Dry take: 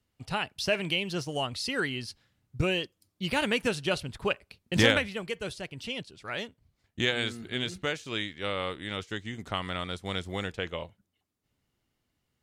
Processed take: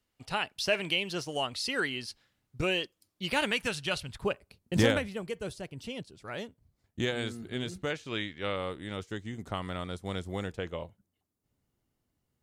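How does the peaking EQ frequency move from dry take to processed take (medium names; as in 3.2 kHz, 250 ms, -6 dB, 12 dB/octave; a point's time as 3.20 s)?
peaking EQ -8 dB 2.3 oct
98 Hz
from 3.51 s 330 Hz
from 4.22 s 2.7 kHz
from 7.90 s 13 kHz
from 8.56 s 2.8 kHz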